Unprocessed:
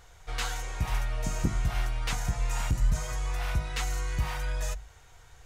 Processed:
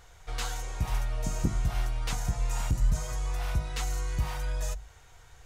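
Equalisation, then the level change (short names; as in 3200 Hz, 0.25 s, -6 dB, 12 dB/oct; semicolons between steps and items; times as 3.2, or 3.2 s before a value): dynamic EQ 2000 Hz, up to -5 dB, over -49 dBFS, Q 0.82; 0.0 dB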